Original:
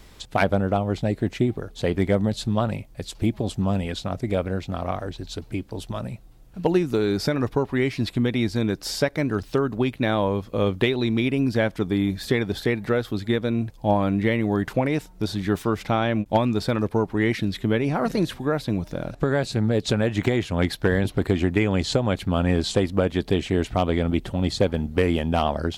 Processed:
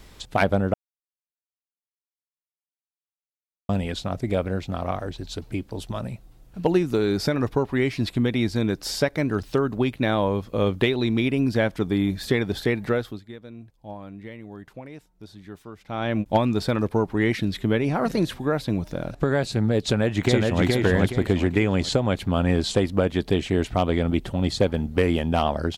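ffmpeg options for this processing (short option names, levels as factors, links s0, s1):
-filter_complex "[0:a]asplit=2[s0][s1];[s1]afade=t=in:st=19.86:d=0.01,afade=t=out:st=20.63:d=0.01,aecho=0:1:420|840|1260|1680|2100:0.841395|0.294488|0.103071|0.0360748|0.0126262[s2];[s0][s2]amix=inputs=2:normalize=0,asplit=5[s3][s4][s5][s6][s7];[s3]atrim=end=0.74,asetpts=PTS-STARTPTS,afade=t=out:st=0.736:d=0.004:c=hsin[s8];[s4]atrim=start=0.74:end=3.69,asetpts=PTS-STARTPTS,volume=0[s9];[s5]atrim=start=3.69:end=13.22,asetpts=PTS-STARTPTS,afade=t=in:d=0.004:c=hsin,afade=t=out:st=9.13:d=0.4:c=qsin:silence=0.133352[s10];[s6]atrim=start=13.22:end=15.87,asetpts=PTS-STARTPTS,volume=0.133[s11];[s7]atrim=start=15.87,asetpts=PTS-STARTPTS,afade=t=in:d=0.4:c=qsin:silence=0.133352[s12];[s8][s9][s10][s11][s12]concat=n=5:v=0:a=1"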